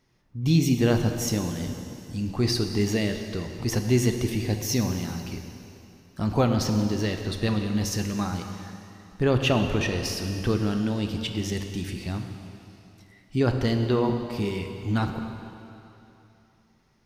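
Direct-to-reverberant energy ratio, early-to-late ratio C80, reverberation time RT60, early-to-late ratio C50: 5.5 dB, 7.0 dB, 3.0 s, 6.0 dB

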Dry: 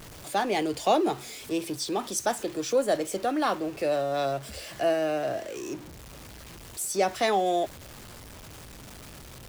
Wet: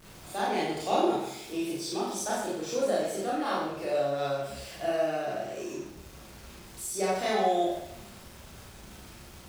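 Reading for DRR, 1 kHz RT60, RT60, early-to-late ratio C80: -7.5 dB, 0.80 s, 0.80 s, 3.5 dB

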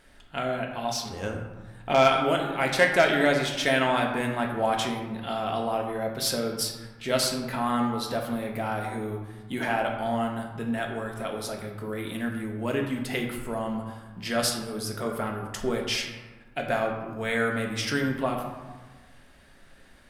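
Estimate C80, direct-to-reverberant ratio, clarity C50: 6.5 dB, 1.0 dB, 5.0 dB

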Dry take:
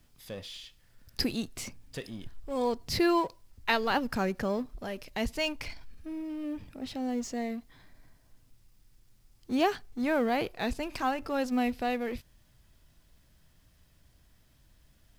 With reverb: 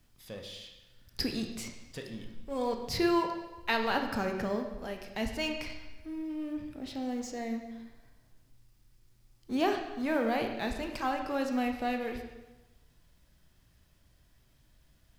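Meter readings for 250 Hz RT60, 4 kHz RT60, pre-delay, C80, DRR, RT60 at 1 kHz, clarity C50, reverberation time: 1.0 s, 1.0 s, 18 ms, 8.0 dB, 3.5 dB, 1.1 s, 6.0 dB, 1.1 s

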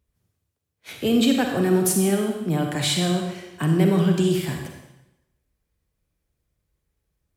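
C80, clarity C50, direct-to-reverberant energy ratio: 6.0 dB, 3.5 dB, 2.5 dB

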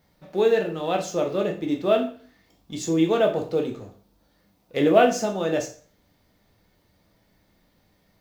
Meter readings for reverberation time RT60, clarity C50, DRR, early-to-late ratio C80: 0.45 s, 10.5 dB, 2.0 dB, 14.5 dB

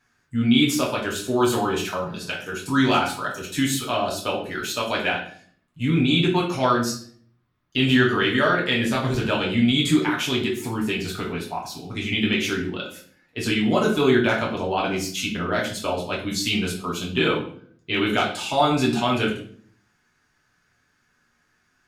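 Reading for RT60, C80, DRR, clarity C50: 0.50 s, 11.0 dB, -4.0 dB, 7.0 dB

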